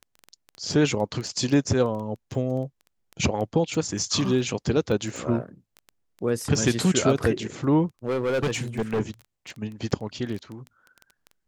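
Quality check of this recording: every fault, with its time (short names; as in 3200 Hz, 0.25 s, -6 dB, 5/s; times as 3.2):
crackle 10/s -30 dBFS
8.06–9.01 clipped -21 dBFS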